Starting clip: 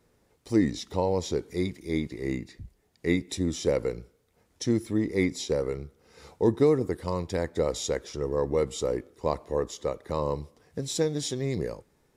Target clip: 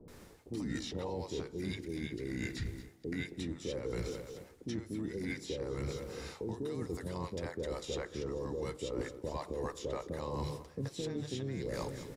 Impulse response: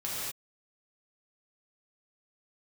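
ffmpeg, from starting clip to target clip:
-filter_complex "[0:a]alimiter=limit=-21dB:level=0:latency=1:release=13,bandreject=frequency=50:width_type=h:width=6,bandreject=frequency=100:width_type=h:width=6,bandreject=frequency=150:width_type=h:width=6,asplit=2[link_01][link_02];[link_02]aecho=0:1:219|438|657:0.0708|0.0326|0.015[link_03];[link_01][link_03]amix=inputs=2:normalize=0,acrossover=split=110|3200[link_04][link_05][link_06];[link_04]acompressor=threshold=-49dB:ratio=4[link_07];[link_05]acompressor=threshold=-35dB:ratio=4[link_08];[link_06]acompressor=threshold=-54dB:ratio=4[link_09];[link_07][link_08][link_09]amix=inputs=3:normalize=0,acrossover=split=620[link_10][link_11];[link_11]adelay=80[link_12];[link_10][link_12]amix=inputs=2:normalize=0,areverse,acompressor=threshold=-48dB:ratio=20,areverse,asplit=3[link_13][link_14][link_15];[link_14]asetrate=33038,aresample=44100,atempo=1.33484,volume=-11dB[link_16];[link_15]asetrate=37084,aresample=44100,atempo=1.18921,volume=-15dB[link_17];[link_13][link_16][link_17]amix=inputs=3:normalize=0,volume=13.5dB"

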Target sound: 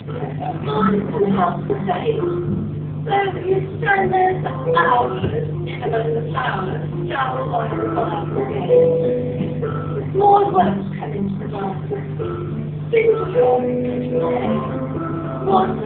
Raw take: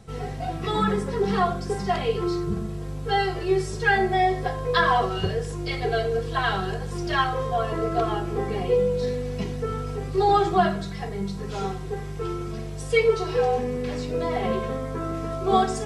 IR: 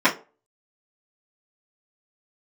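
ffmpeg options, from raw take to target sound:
-filter_complex "[0:a]equalizer=frequency=120:width=0.95:gain=6.5,asplit=2[link_01][link_02];[1:a]atrim=start_sample=2205[link_03];[link_02][link_03]afir=irnorm=-1:irlink=0,volume=-27.5dB[link_04];[link_01][link_04]amix=inputs=2:normalize=0,acompressor=mode=upward:threshold=-23dB:ratio=2.5,volume=5dB" -ar 8000 -c:a libopencore_amrnb -b:a 5150

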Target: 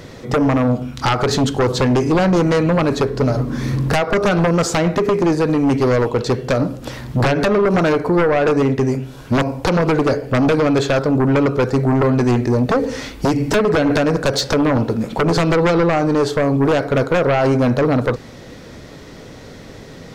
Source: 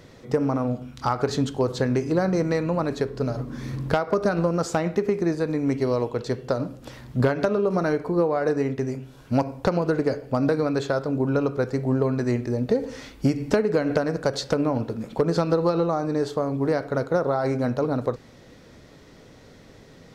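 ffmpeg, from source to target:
ffmpeg -i in.wav -af "aeval=exprs='0.282*sin(PI/2*2.51*val(0)/0.282)':channel_layout=same" out.wav

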